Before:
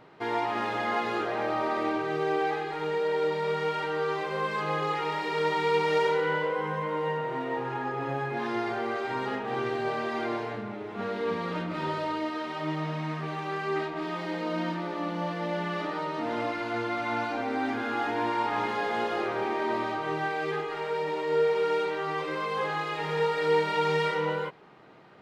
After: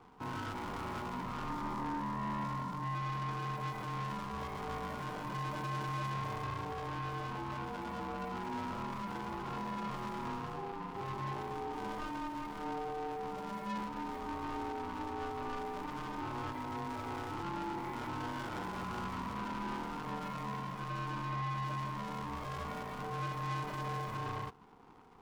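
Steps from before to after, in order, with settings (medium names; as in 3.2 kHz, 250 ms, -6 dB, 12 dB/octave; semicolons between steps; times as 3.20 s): median filter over 41 samples; in parallel at -0.5 dB: peak limiter -30 dBFS, peak gain reduction 11 dB; 1.49–2.95 s: on the sum: graphic EQ 125/250/500/1000/2000 Hz -12/+7/+5/-5/-6 dB; saturation -27 dBFS, distortion -12 dB; ring modulator 600 Hz; trim -4.5 dB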